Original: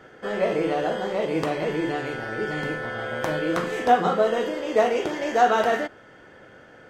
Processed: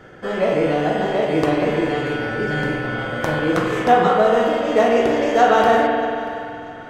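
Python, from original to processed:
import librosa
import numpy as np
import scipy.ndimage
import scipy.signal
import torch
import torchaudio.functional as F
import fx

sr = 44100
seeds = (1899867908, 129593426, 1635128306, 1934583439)

y = fx.low_shelf(x, sr, hz=160.0, db=8.5)
y = fx.echo_feedback(y, sr, ms=635, feedback_pct=39, wet_db=-20.0)
y = fx.rev_spring(y, sr, rt60_s=2.6, pass_ms=(47,), chirp_ms=75, drr_db=0.0)
y = y * 10.0 ** (3.0 / 20.0)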